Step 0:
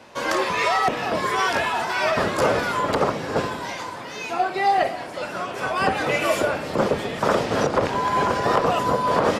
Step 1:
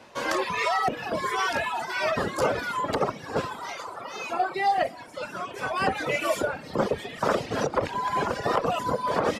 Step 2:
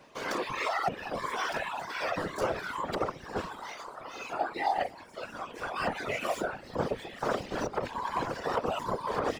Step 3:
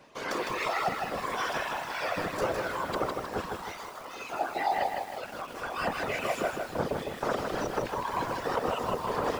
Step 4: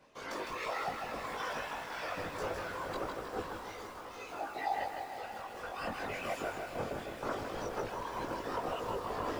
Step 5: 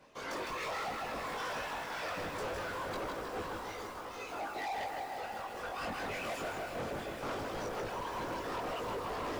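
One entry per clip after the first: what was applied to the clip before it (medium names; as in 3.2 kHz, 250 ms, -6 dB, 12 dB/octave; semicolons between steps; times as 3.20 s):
painted sound noise, 3.25–4.55 s, 370–1400 Hz -33 dBFS; reverb removal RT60 1.8 s; trim -3 dB
median filter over 3 samples; whisper effect; trim -6 dB
bit-crushed delay 157 ms, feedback 55%, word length 8-bit, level -4 dB
chorus voices 6, 0.22 Hz, delay 20 ms, depth 2.2 ms; echo that smears into a reverb 489 ms, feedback 48%, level -9.5 dB; trim -4.5 dB
hard clipper -37.5 dBFS, distortion -9 dB; trim +2.5 dB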